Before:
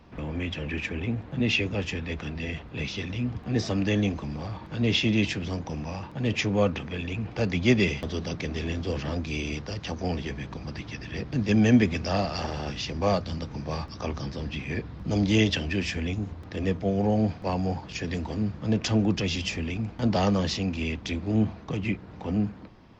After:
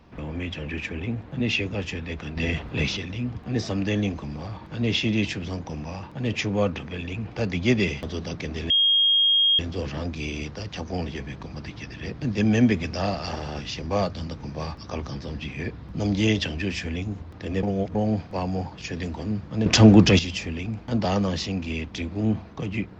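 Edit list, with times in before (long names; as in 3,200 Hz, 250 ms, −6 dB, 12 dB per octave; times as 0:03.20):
0:02.37–0:02.97: clip gain +7 dB
0:08.70: insert tone 3,250 Hz −16 dBFS 0.89 s
0:16.74–0:17.06: reverse
0:18.77–0:19.30: clip gain +11 dB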